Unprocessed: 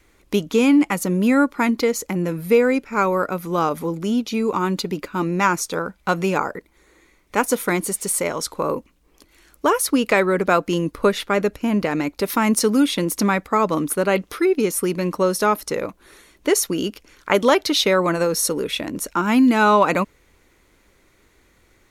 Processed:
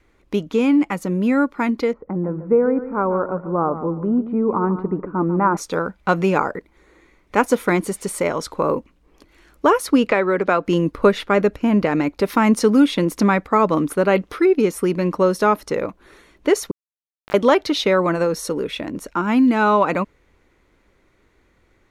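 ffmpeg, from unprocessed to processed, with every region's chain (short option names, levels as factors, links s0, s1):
-filter_complex "[0:a]asettb=1/sr,asplit=3[s0][s1][s2];[s0]atrim=end=1.934[s3];[s1]atrim=start=1.93:end=5.57,asetpts=PTS-STARTPTS,afade=t=in:d=0.004:c=qsin,afade=t=out:st=3.636:d=0.004:c=qsin,lowpass=f=1300:w=0.5412,lowpass=f=1300:w=1.3066,aecho=1:1:144|288|432:0.237|0.0664|0.0186,atrim=end_sample=160524[s4];[s2]atrim=start=5.566[s5];[s3][s4]acrossfade=d=0.004:c1=hsin:c2=qsin[s6];[s6][s5]acrossfade=d=0.004:c1=qsin:c2=hsin,asettb=1/sr,asplit=3[s7][s8][s9];[s7]atrim=end=10.064[s10];[s8]atrim=start=10.06:end=10.65,asetpts=PTS-STARTPTS,afade=t=in:d=0.004:c=qsin,afade=t=out:st=0.586:d=0.004:c=qsin,lowpass=7400,acrossover=split=280|1400|3400[s11][s12][s13][s14];[s11]acompressor=threshold=0.0158:ratio=3[s15];[s12]acompressor=threshold=0.112:ratio=3[s16];[s13]acompressor=threshold=0.0631:ratio=3[s17];[s14]acompressor=threshold=0.00631:ratio=3[s18];[s15][s16][s17][s18]amix=inputs=4:normalize=0[s19];[s9]atrim=start=10.646[s20];[s10][s19]acrossfade=d=0.004:c1=hsin:c2=qsin[s21];[s21][s20]acrossfade=d=0.004:c1=qsin:c2=hsin,asettb=1/sr,asplit=3[s22][s23][s24];[s22]atrim=end=16.714[s25];[s23]atrim=start=16.71:end=17.34,asetpts=PTS-STARTPTS,afade=t=in:d=0.004:c=qsin,afade=t=out:st=0.626:d=0.004:c=qsin,acompressor=threshold=0.0112:ratio=2:attack=3.2:release=140:knee=1:detection=peak,aeval=exprs='val(0)*gte(abs(val(0)),0.075)':c=same[s26];[s24]atrim=start=17.336[s27];[s25][s26]acrossfade=d=0.004:c1=hsin:c2=qsin[s28];[s28][s27]acrossfade=d=0.004:c1=qsin:c2=hsin,lowpass=f=2200:p=1,dynaudnorm=f=470:g=17:m=3.76,volume=0.891"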